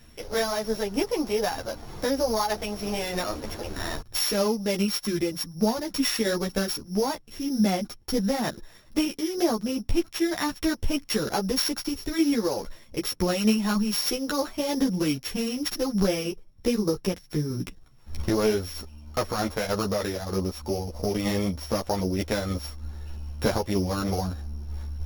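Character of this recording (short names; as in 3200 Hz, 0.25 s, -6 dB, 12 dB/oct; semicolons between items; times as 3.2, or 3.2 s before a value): a buzz of ramps at a fixed pitch in blocks of 8 samples; tremolo saw down 3.2 Hz, depth 35%; a shimmering, thickened sound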